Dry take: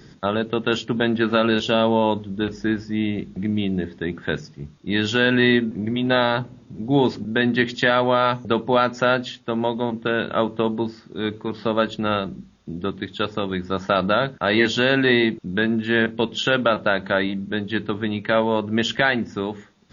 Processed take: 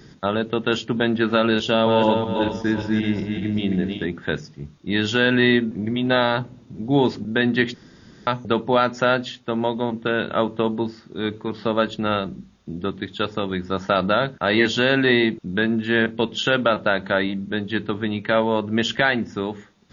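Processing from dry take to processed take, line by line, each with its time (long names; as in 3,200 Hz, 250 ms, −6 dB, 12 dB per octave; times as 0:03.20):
0:01.67–0:04.07: feedback delay that plays each chunk backwards 192 ms, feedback 52%, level −4 dB
0:07.74–0:08.27: fill with room tone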